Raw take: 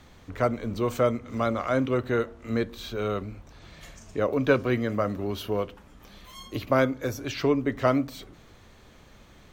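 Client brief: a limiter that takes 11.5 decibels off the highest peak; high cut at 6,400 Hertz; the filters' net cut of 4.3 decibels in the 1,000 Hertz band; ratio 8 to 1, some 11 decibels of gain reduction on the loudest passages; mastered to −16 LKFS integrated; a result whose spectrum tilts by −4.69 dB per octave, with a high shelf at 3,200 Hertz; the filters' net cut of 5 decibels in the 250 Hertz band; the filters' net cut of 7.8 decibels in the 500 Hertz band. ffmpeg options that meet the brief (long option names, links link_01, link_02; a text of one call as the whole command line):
ffmpeg -i in.wav -af "lowpass=6400,equalizer=frequency=250:width_type=o:gain=-3.5,equalizer=frequency=500:width_type=o:gain=-7.5,equalizer=frequency=1000:width_type=o:gain=-5,highshelf=frequency=3200:gain=6,acompressor=threshold=-33dB:ratio=8,volume=27.5dB,alimiter=limit=-5.5dB:level=0:latency=1" out.wav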